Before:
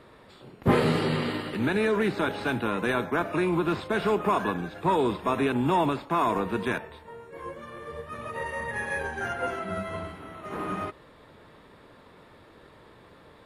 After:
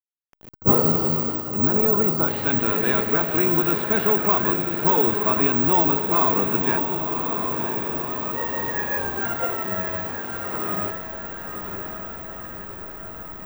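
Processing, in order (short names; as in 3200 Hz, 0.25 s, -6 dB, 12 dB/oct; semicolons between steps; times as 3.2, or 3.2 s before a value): level-crossing sampler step -40.5 dBFS; on a send: diffused feedback echo 1.075 s, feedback 63%, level -6 dB; on the sum: careless resampling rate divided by 2×, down filtered, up zero stuff; spectral gain 0.51–2.28, 1500–4400 Hz -12 dB; gain +1.5 dB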